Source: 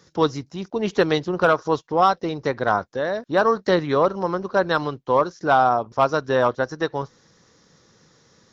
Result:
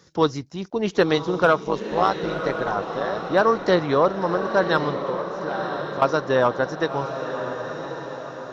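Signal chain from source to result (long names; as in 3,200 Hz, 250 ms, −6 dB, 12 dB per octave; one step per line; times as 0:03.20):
0:01.59–0:03.26: amplitude modulation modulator 110 Hz, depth 70%
0:04.96–0:06.02: downward compressor 4 to 1, threshold −32 dBFS, peak gain reduction 16 dB
feedback delay with all-pass diffusion 1,042 ms, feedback 51%, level −8 dB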